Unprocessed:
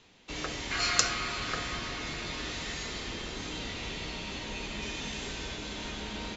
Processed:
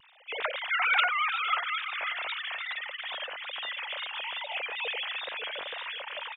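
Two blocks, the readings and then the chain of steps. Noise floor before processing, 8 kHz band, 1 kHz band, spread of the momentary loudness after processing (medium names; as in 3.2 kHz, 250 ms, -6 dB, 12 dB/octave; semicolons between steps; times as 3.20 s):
-43 dBFS, no reading, +6.5 dB, 11 LU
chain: formants replaced by sine waves; feedback delay 544 ms, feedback 34%, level -12.5 dB; wow and flutter 85 cents; trim +2.5 dB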